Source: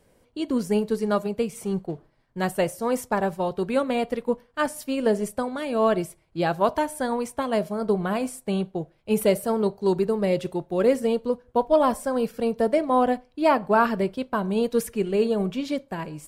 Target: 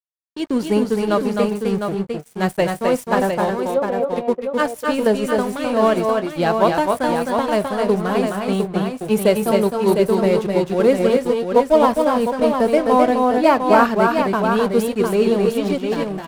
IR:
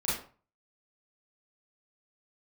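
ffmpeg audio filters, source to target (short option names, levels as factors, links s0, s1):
-filter_complex "[0:a]aeval=exprs='sgn(val(0))*max(abs(val(0))-0.0112,0)':c=same,asettb=1/sr,asplit=3[s0][s1][s2];[s0]atrim=end=3.544[s3];[s1]atrim=start=3.54:end=4.16,asetpts=PTS-STARTPTS,afade=t=in:d=0.004:c=qsin,afade=t=out:st=0.616:d=0.004:c=qsin,bandpass=f=530:t=q:w=1.8:csg=0[s4];[s2]atrim=start=4.156[s5];[s3][s4]acrossfade=d=0.004:c1=hsin:c2=qsin[s6];[s6][s5]acrossfade=d=0.004:c1=qsin:c2=hsin,asplit=2[s7][s8];[s8]aecho=0:1:259|279|705:0.631|0.266|0.501[s9];[s7][s9]amix=inputs=2:normalize=0,volume=1.88"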